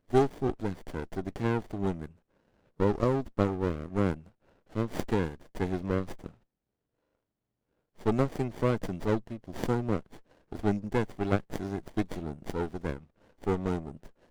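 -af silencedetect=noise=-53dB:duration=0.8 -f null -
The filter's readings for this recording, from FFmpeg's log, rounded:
silence_start: 6.34
silence_end: 7.98 | silence_duration: 1.64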